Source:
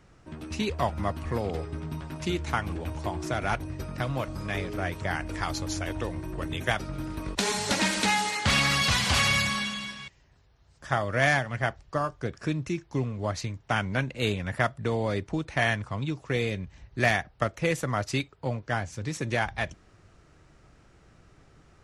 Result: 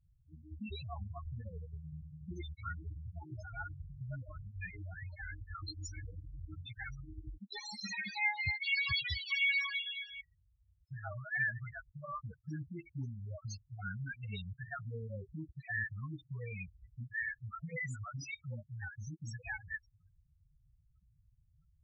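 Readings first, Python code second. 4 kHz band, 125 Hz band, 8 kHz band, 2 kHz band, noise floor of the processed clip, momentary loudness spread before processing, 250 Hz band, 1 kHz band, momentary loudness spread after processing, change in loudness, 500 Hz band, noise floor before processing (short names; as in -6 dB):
-12.0 dB, -11.5 dB, -20.5 dB, -8.0 dB, -72 dBFS, 11 LU, -18.0 dB, -18.5 dB, 15 LU, -11.0 dB, -23.0 dB, -59 dBFS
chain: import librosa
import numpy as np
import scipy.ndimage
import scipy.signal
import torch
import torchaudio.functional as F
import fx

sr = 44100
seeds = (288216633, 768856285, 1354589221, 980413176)

y = fx.tone_stack(x, sr, knobs='5-5-5')
y = np.clip(y, -10.0 ** (-30.5 / 20.0), 10.0 ** (-30.5 / 20.0))
y = fx.spec_topn(y, sr, count=4)
y = fx.peak_eq(y, sr, hz=2100.0, db=5.0, octaves=0.25)
y = fx.dispersion(y, sr, late='highs', ms=134.0, hz=500.0)
y = y * librosa.db_to_amplitude(5.5)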